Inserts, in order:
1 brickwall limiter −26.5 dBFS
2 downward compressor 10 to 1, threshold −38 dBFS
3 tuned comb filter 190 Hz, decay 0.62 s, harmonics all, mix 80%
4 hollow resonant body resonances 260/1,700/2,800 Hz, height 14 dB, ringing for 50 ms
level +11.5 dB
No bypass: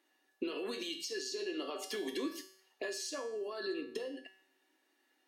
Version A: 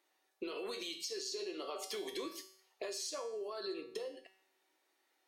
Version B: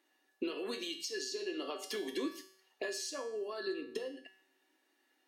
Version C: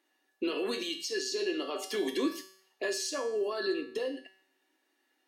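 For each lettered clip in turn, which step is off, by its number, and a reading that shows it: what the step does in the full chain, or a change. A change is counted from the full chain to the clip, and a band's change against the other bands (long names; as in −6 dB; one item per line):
4, 250 Hz band −5.5 dB
1, average gain reduction 2.5 dB
2, average gain reduction 5.5 dB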